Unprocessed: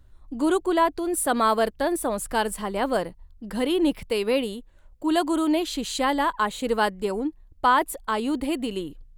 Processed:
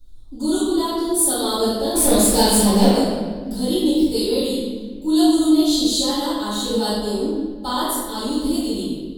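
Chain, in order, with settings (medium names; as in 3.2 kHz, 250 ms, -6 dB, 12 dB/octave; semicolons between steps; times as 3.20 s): FFT filter 410 Hz 0 dB, 2.5 kHz -15 dB, 3.6 kHz +11 dB; 1.94–2.86 s: waveshaping leveller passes 3; chorus 0.79 Hz, delay 19 ms, depth 5.5 ms; reverberation RT60 1.6 s, pre-delay 3 ms, DRR -11 dB; trim -10 dB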